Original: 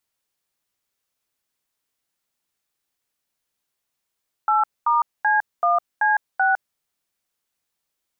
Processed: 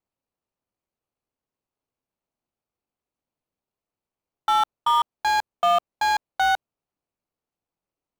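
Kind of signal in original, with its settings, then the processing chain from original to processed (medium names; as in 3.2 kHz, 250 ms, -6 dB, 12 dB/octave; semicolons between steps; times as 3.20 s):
DTMF "8*C1C6", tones 157 ms, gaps 226 ms, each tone -18 dBFS
median filter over 25 samples; in parallel at -8.5 dB: companded quantiser 4-bit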